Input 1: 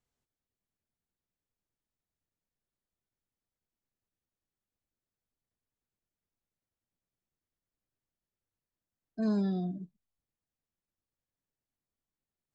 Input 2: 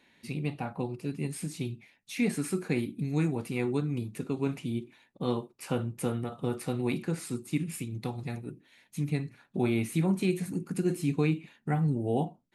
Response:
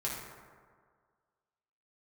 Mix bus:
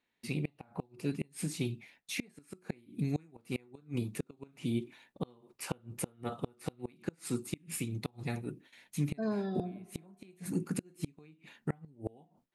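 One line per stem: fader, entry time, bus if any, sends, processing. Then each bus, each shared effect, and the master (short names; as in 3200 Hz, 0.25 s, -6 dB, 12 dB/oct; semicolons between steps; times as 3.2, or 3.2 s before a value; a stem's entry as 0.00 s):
+1.5 dB, 0.00 s, send -19 dB, tone controls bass -13 dB, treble -12 dB
+2.0 dB, 0.00 s, no send, gate with hold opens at -50 dBFS; low shelf 220 Hz -4 dB; flipped gate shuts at -23 dBFS, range -31 dB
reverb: on, RT60 1.8 s, pre-delay 4 ms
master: dry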